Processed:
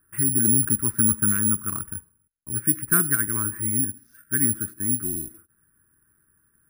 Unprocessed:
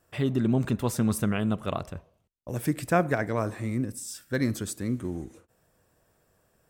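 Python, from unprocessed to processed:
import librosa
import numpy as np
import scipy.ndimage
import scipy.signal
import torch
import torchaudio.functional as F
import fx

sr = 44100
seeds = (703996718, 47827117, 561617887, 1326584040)

y = fx.curve_eq(x, sr, hz=(350.0, 560.0, 1500.0, 3700.0), db=(0, -28, 7, -24))
y = (np.kron(scipy.signal.resample_poly(y, 1, 4), np.eye(4)[0]) * 4)[:len(y)]
y = fx.notch(y, sr, hz=850.0, q=21.0)
y = y * 10.0 ** (-1.0 / 20.0)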